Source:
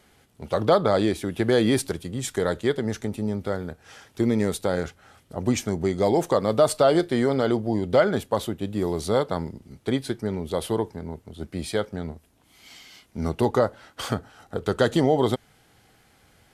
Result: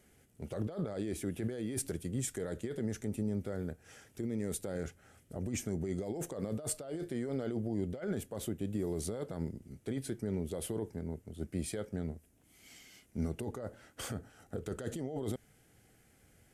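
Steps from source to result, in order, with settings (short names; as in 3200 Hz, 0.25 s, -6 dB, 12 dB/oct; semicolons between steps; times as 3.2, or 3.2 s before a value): negative-ratio compressor -26 dBFS, ratio -1; limiter -16 dBFS, peak gain reduction 7.5 dB; graphic EQ 1000/4000/8000 Hz -11/-10/+3 dB; gain -8 dB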